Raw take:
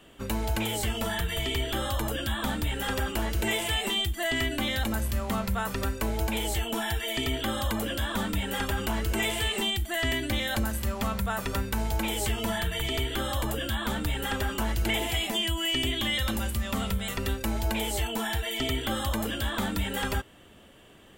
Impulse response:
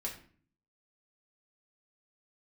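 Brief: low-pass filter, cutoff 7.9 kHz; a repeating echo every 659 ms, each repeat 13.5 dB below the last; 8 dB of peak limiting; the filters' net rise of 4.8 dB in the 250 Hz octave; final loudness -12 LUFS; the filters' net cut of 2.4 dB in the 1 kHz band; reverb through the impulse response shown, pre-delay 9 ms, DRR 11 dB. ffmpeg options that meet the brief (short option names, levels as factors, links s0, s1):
-filter_complex "[0:a]lowpass=7900,equalizer=f=250:t=o:g=6,equalizer=f=1000:t=o:g=-3.5,alimiter=limit=0.0631:level=0:latency=1,aecho=1:1:659|1318:0.211|0.0444,asplit=2[s0][s1];[1:a]atrim=start_sample=2205,adelay=9[s2];[s1][s2]afir=irnorm=-1:irlink=0,volume=0.266[s3];[s0][s3]amix=inputs=2:normalize=0,volume=9.44"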